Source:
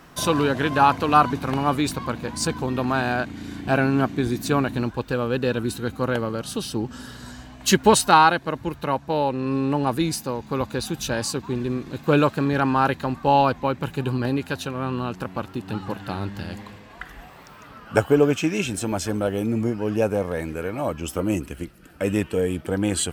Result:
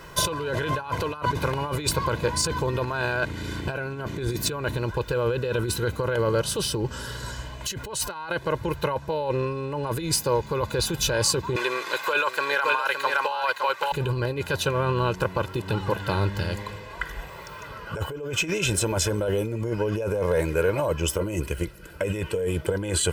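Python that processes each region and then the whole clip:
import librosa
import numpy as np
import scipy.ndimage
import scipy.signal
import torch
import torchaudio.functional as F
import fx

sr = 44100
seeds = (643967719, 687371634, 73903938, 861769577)

y = fx.chain(x, sr, fx.highpass(hz=1000.0, slope=12),
    fx.echo_single(ms=565, db=-5.0),
    fx.band_squash(depth_pct=70), at=(11.56, 13.92))
y = fx.over_compress(y, sr, threshold_db=-27.0, ratio=-1.0)
y = y + 0.75 * np.pad(y, (int(2.0 * sr / 1000.0), 0))[:len(y)]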